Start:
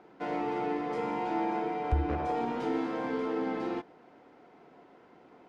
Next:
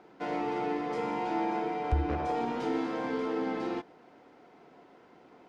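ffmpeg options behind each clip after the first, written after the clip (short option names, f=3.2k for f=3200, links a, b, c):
-af "equalizer=f=5.7k:t=o:w=1.7:g=4"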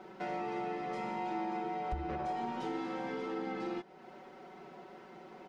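-af "aecho=1:1:5.3:0.95,acompressor=threshold=-45dB:ratio=2,volume=2dB"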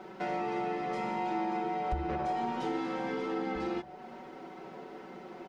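-filter_complex "[0:a]asplit=2[a][b];[b]adelay=1633,volume=-16dB,highshelf=f=4k:g=-36.7[c];[a][c]amix=inputs=2:normalize=0,volume=4dB"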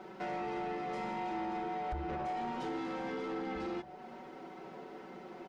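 -af "asoftclip=type=tanh:threshold=-30dB,volume=-2dB"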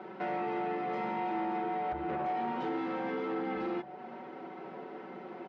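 -af "highpass=150,lowpass=2.8k,volume=4dB"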